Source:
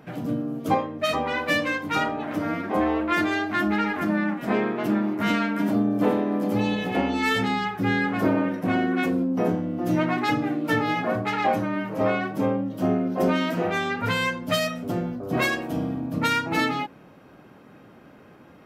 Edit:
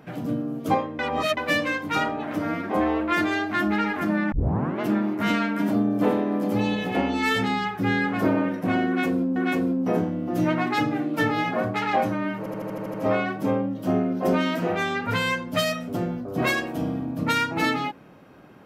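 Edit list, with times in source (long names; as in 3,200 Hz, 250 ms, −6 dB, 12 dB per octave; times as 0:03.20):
0:00.99–0:01.37: reverse
0:04.32: tape start 0.49 s
0:08.87–0:09.36: repeat, 2 plays
0:11.89: stutter 0.08 s, 8 plays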